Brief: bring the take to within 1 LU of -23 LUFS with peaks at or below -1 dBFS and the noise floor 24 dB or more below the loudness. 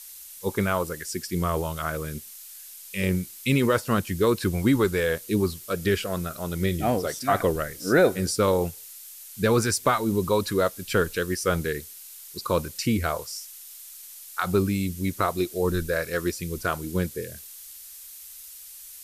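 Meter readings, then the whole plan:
noise floor -44 dBFS; noise floor target -50 dBFS; loudness -26.0 LUFS; peak level -8.5 dBFS; loudness target -23.0 LUFS
-> noise print and reduce 6 dB; trim +3 dB

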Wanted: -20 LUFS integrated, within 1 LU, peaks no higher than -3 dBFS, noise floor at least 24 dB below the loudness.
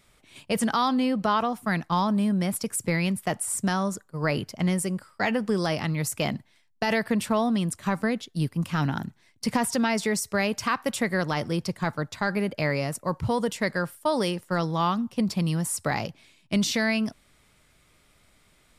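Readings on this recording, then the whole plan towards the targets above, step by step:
loudness -26.5 LUFS; peak level -13.0 dBFS; loudness target -20.0 LUFS
-> trim +6.5 dB

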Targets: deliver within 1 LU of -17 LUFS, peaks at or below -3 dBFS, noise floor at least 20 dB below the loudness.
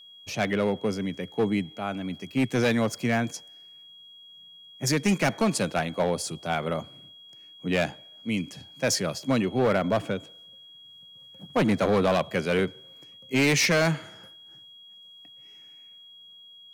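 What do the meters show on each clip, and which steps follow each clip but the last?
clipped samples 1.4%; clipping level -17.5 dBFS; steady tone 3.3 kHz; tone level -47 dBFS; loudness -26.5 LUFS; peak level -17.5 dBFS; loudness target -17.0 LUFS
-> clip repair -17.5 dBFS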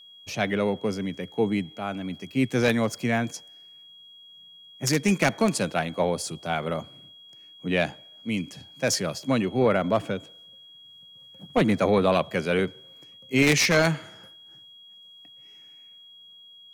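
clipped samples 0.0%; steady tone 3.3 kHz; tone level -47 dBFS
-> band-stop 3.3 kHz, Q 30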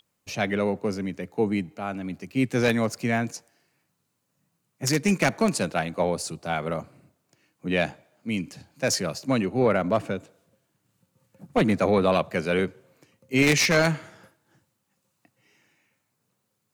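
steady tone not found; loudness -25.5 LUFS; peak level -8.5 dBFS; loudness target -17.0 LUFS
-> trim +8.5 dB; peak limiter -3 dBFS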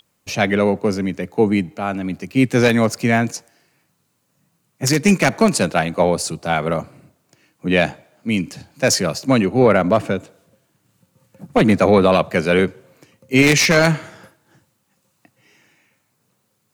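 loudness -17.5 LUFS; peak level -3.0 dBFS; noise floor -68 dBFS

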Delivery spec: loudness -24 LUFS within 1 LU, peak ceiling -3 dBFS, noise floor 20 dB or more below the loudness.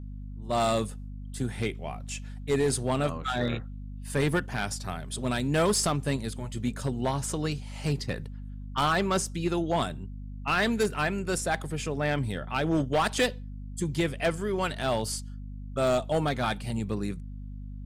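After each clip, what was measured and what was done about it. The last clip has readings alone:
clipped samples 0.9%; clipping level -19.0 dBFS; hum 50 Hz; highest harmonic 250 Hz; hum level -37 dBFS; loudness -29.0 LUFS; peak level -19.0 dBFS; loudness target -24.0 LUFS
-> clip repair -19 dBFS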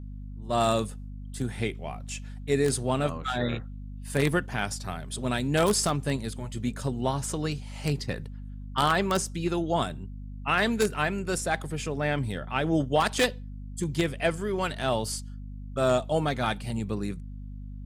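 clipped samples 0.0%; hum 50 Hz; highest harmonic 250 Hz; hum level -37 dBFS
-> de-hum 50 Hz, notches 5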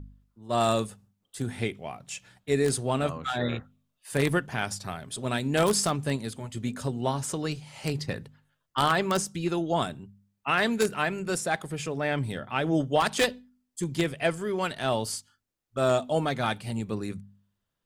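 hum not found; loudness -28.5 LUFS; peak level -9.0 dBFS; loudness target -24.0 LUFS
-> trim +4.5 dB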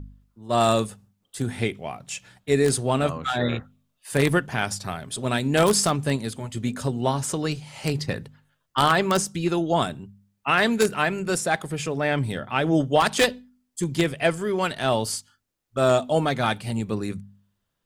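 loudness -24.0 LUFS; peak level -4.5 dBFS; noise floor -76 dBFS

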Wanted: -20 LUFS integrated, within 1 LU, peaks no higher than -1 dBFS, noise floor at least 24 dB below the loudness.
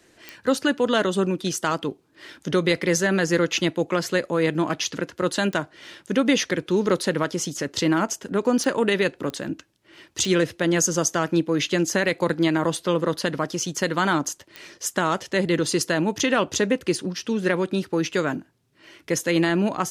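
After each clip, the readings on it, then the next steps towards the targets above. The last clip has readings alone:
clicks found 6; loudness -23.5 LUFS; peak level -6.5 dBFS; loudness target -20.0 LUFS
-> de-click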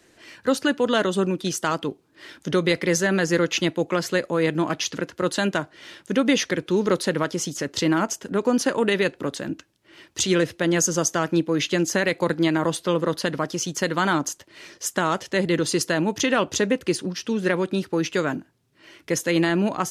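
clicks found 0; loudness -23.5 LUFS; peak level -6.5 dBFS; loudness target -20.0 LUFS
-> trim +3.5 dB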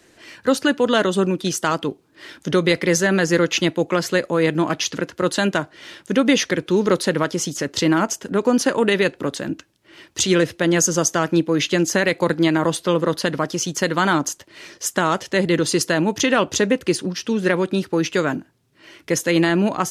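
loudness -20.0 LUFS; peak level -3.0 dBFS; noise floor -56 dBFS

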